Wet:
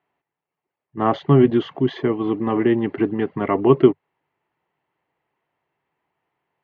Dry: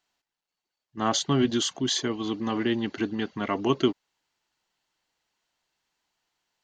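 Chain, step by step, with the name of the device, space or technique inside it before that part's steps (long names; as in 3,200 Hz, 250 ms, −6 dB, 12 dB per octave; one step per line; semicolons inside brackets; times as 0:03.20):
bass cabinet (loudspeaker in its box 87–2,100 Hz, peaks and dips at 96 Hz +3 dB, 150 Hz +7 dB, 210 Hz −4 dB, 400 Hz +5 dB, 1,500 Hz −8 dB)
level +7.5 dB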